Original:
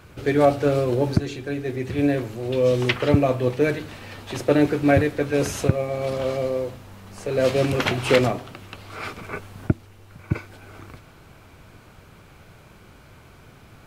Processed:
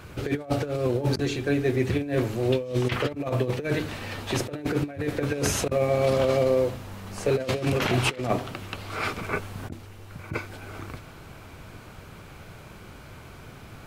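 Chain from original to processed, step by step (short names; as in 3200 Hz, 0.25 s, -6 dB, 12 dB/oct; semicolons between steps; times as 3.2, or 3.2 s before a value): negative-ratio compressor -24 dBFS, ratio -0.5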